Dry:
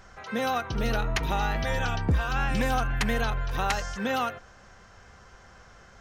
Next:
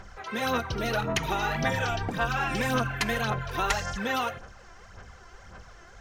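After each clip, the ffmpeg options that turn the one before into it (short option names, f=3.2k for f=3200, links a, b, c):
-af "aphaser=in_gain=1:out_gain=1:delay=3:decay=0.58:speed=1.8:type=sinusoidal,afftfilt=real='re*lt(hypot(re,im),0.501)':imag='im*lt(hypot(re,im),0.501)':win_size=1024:overlap=0.75,bandreject=f=271.6:t=h:w=4,bandreject=f=543.2:t=h:w=4,bandreject=f=814.8:t=h:w=4,bandreject=f=1.0864k:t=h:w=4,bandreject=f=1.358k:t=h:w=4,bandreject=f=1.6296k:t=h:w=4,bandreject=f=1.9012k:t=h:w=4,bandreject=f=2.1728k:t=h:w=4,bandreject=f=2.4444k:t=h:w=4,bandreject=f=2.716k:t=h:w=4,bandreject=f=2.9876k:t=h:w=4,bandreject=f=3.2592k:t=h:w=4,bandreject=f=3.5308k:t=h:w=4,bandreject=f=3.8024k:t=h:w=4,bandreject=f=4.074k:t=h:w=4,bandreject=f=4.3456k:t=h:w=4,bandreject=f=4.6172k:t=h:w=4,bandreject=f=4.8888k:t=h:w=4,bandreject=f=5.1604k:t=h:w=4,bandreject=f=5.432k:t=h:w=4,bandreject=f=5.7036k:t=h:w=4,bandreject=f=5.9752k:t=h:w=4,bandreject=f=6.2468k:t=h:w=4,bandreject=f=6.5184k:t=h:w=4,bandreject=f=6.79k:t=h:w=4,bandreject=f=7.0616k:t=h:w=4,bandreject=f=7.3332k:t=h:w=4,bandreject=f=7.6048k:t=h:w=4,bandreject=f=7.8764k:t=h:w=4,bandreject=f=8.148k:t=h:w=4,bandreject=f=8.4196k:t=h:w=4,bandreject=f=8.6912k:t=h:w=4,bandreject=f=8.9628k:t=h:w=4,bandreject=f=9.2344k:t=h:w=4"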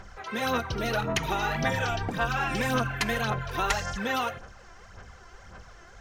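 -af anull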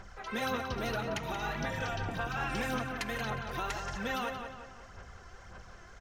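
-filter_complex "[0:a]alimiter=limit=-21dB:level=0:latency=1:release=461,asplit=2[a][b];[b]adelay=179,lowpass=f=4k:p=1,volume=-6.5dB,asplit=2[c][d];[d]adelay=179,lowpass=f=4k:p=1,volume=0.46,asplit=2[e][f];[f]adelay=179,lowpass=f=4k:p=1,volume=0.46,asplit=2[g][h];[h]adelay=179,lowpass=f=4k:p=1,volume=0.46,asplit=2[i][j];[j]adelay=179,lowpass=f=4k:p=1,volume=0.46[k];[c][e][g][i][k]amix=inputs=5:normalize=0[l];[a][l]amix=inputs=2:normalize=0,volume=-3.5dB"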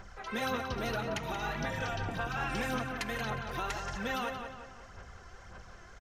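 -af "aresample=32000,aresample=44100"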